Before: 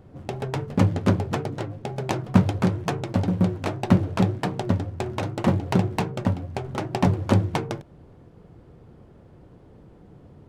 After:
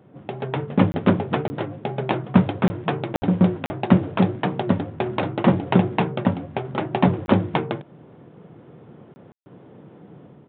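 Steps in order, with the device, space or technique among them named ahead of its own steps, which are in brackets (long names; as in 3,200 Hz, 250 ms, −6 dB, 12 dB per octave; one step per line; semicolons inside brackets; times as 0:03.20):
call with lost packets (high-pass filter 130 Hz 24 dB per octave; downsampling to 8,000 Hz; automatic gain control gain up to 6 dB; dropped packets bursts)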